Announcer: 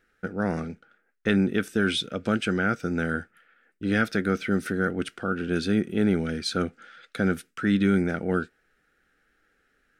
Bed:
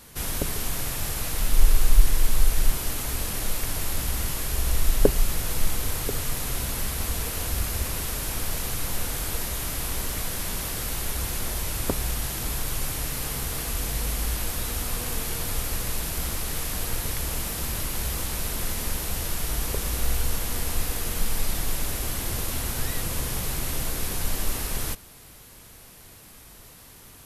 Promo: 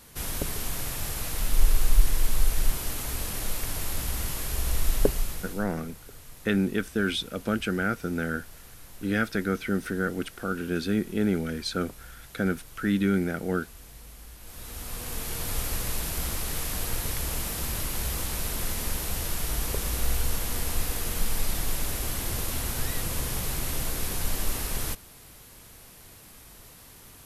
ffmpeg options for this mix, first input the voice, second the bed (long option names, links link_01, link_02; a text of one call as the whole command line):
ffmpeg -i stem1.wav -i stem2.wav -filter_complex "[0:a]adelay=5200,volume=-2.5dB[link_01];[1:a]volume=14.5dB,afade=type=out:start_time=4.97:duration=0.7:silence=0.158489,afade=type=in:start_time=14.4:duration=1.2:silence=0.133352[link_02];[link_01][link_02]amix=inputs=2:normalize=0" out.wav